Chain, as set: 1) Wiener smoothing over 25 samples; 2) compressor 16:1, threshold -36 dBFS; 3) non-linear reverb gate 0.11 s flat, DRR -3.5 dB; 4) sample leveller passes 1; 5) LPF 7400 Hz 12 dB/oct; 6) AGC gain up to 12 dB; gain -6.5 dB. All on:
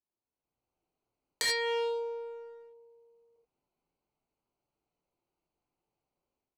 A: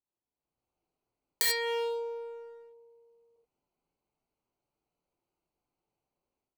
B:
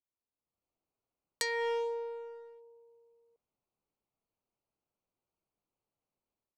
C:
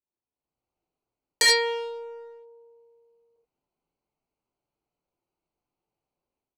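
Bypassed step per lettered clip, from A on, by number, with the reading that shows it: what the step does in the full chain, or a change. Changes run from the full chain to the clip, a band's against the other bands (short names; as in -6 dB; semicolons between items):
5, 8 kHz band +4.0 dB; 3, crest factor change +2.5 dB; 2, mean gain reduction 2.5 dB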